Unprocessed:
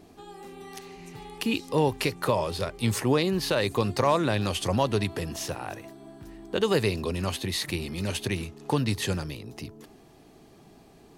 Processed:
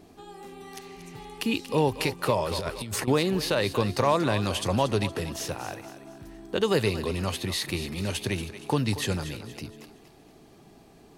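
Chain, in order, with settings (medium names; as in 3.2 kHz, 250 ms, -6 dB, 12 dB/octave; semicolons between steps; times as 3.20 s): thinning echo 234 ms, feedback 40%, high-pass 420 Hz, level -11.5 dB; 2.51–3.08 s: compressor with a negative ratio -32 dBFS, ratio -1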